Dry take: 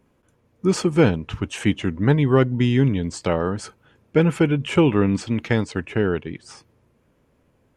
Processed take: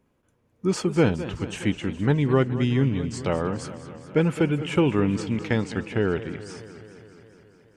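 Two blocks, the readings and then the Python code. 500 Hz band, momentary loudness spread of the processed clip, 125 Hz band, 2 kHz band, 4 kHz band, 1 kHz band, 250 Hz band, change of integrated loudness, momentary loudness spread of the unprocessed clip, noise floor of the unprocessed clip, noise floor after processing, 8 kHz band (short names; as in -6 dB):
-3.5 dB, 13 LU, -3.5 dB, -3.5 dB, -3.5 dB, -3.5 dB, -3.5 dB, -3.5 dB, 10 LU, -64 dBFS, -68 dBFS, -3.5 dB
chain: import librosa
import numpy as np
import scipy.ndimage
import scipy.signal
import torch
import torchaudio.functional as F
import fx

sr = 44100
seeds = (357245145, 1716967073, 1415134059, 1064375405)

y = fx.rider(x, sr, range_db=10, speed_s=2.0)
y = fx.echo_warbled(y, sr, ms=209, feedback_pct=70, rate_hz=2.8, cents=120, wet_db=-14)
y = y * librosa.db_to_amplitude(-4.5)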